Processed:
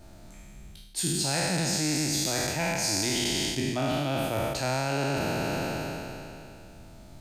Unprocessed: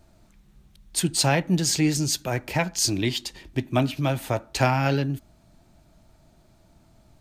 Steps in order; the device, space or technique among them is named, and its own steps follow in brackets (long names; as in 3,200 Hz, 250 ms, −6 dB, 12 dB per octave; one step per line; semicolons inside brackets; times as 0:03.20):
peak hold with a decay on every bin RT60 2.76 s
mains-hum notches 60/120 Hz
compression on the reversed sound (reversed playback; downward compressor 6 to 1, threshold −31 dBFS, peak gain reduction 17 dB; reversed playback)
parametric band 1,100 Hz −3.5 dB 0.3 octaves
level +5 dB